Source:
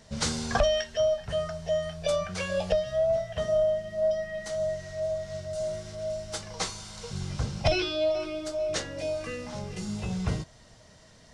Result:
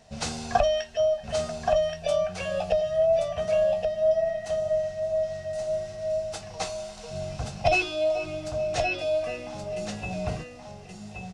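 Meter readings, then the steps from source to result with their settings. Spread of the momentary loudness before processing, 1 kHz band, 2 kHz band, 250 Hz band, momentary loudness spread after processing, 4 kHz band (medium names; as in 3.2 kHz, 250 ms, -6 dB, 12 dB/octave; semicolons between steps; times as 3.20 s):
10 LU, +6.5 dB, +3.5 dB, -2.5 dB, 12 LU, -2.0 dB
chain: small resonant body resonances 720/2600 Hz, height 14 dB, ringing for 35 ms; on a send: delay 1125 ms -5 dB; on the sum: trim -3.5 dB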